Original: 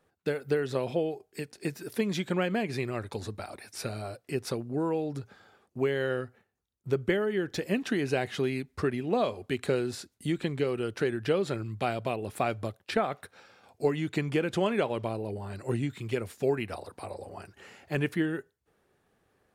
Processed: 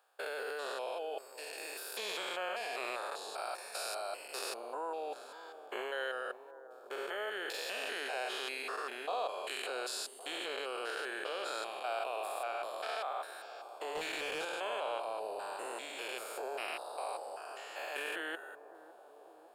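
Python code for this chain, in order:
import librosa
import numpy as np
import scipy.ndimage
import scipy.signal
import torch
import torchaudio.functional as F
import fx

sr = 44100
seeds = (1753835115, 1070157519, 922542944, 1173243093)

p1 = fx.spec_steps(x, sr, hold_ms=200)
p2 = scipy.signal.sosfilt(scipy.signal.butter(4, 650.0, 'highpass', fs=sr, output='sos'), p1)
p3 = fx.peak_eq(p2, sr, hz=2000.0, db=-11.5, octaves=0.29)
p4 = fx.notch(p3, sr, hz=5900.0, q=7.0)
p5 = fx.leveller(p4, sr, passes=2, at=(13.95, 14.45))
p6 = fx.over_compress(p5, sr, threshold_db=-47.0, ratio=-0.5)
p7 = p5 + F.gain(torch.from_numpy(p6), -1.5).numpy()
p8 = fx.echo_bbd(p7, sr, ms=556, stages=4096, feedback_pct=75, wet_db=-14.0)
y = F.gain(torch.from_numpy(p8), 1.0).numpy()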